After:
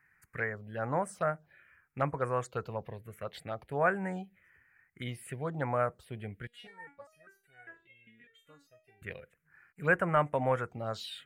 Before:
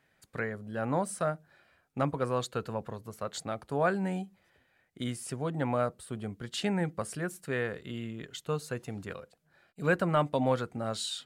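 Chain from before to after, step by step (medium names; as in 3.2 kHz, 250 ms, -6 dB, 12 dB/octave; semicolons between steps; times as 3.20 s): ten-band graphic EQ 250 Hz -8 dB, 2 kHz +9 dB, 4 kHz -7 dB, 8 kHz -4 dB; touch-sensitive phaser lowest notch 580 Hz, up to 4.3 kHz, full sweep at -27 dBFS; 6.47–9.02 s: resonator arpeggio 5 Hz 240–740 Hz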